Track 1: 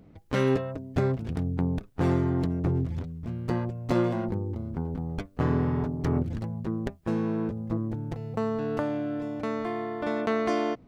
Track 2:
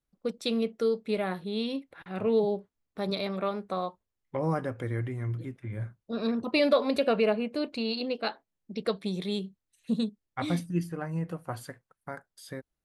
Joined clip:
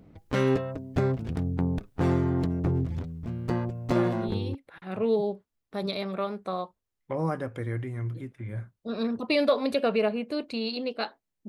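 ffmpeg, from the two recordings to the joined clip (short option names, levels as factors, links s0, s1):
-filter_complex "[1:a]asplit=2[s0][s1];[0:a]apad=whole_dur=11.48,atrim=end=11.48,atrim=end=4.552[s2];[s1]atrim=start=1.788:end=8.72[s3];[s0]atrim=start=1.17:end=1.79,asetpts=PTS-STARTPTS,volume=0.473,afade=t=in:d=0.004:c=hsin,afade=t=out:st=0.616:d=0.004:c=hsin,adelay=173313S[s4];[s2][s3]acrossfade=d=0.004:c1=hsin:c2=hsin[s5];[s5][s4]amix=inputs=2:normalize=0"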